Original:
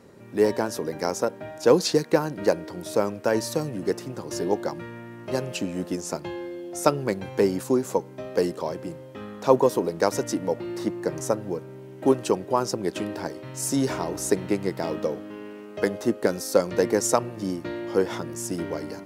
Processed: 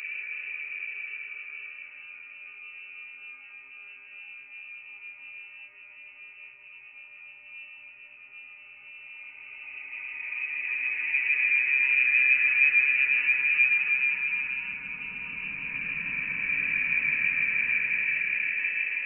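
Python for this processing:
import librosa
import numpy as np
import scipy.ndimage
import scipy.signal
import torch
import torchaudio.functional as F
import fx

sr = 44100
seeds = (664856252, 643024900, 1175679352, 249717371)

y = fx.paulstretch(x, sr, seeds[0], factor=23.0, window_s=0.25, from_s=11.56)
y = fx.echo_heads(y, sr, ms=160, heads='first and second', feedback_pct=48, wet_db=-8.0)
y = fx.freq_invert(y, sr, carrier_hz=2800)
y = y * 10.0 ** (-6.5 / 20.0)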